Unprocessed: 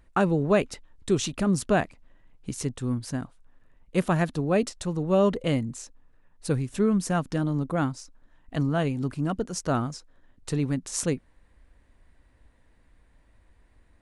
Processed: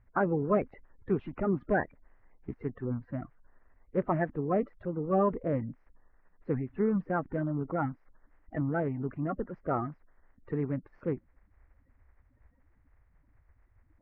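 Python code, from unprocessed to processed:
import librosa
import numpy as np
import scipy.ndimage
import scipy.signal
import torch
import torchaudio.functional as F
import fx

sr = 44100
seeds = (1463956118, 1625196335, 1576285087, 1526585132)

y = fx.spec_quant(x, sr, step_db=30)
y = scipy.signal.sosfilt(scipy.signal.ellip(4, 1.0, 80, 2000.0, 'lowpass', fs=sr, output='sos'), y)
y = F.gain(torch.from_numpy(y), -4.0).numpy()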